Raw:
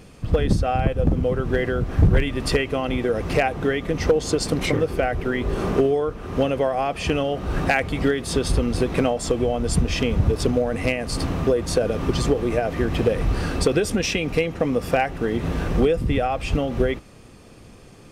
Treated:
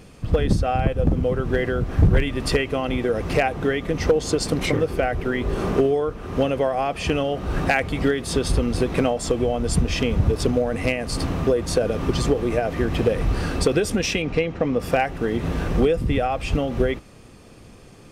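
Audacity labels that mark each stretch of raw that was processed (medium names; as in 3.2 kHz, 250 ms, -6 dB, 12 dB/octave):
14.220000	14.800000	distance through air 97 m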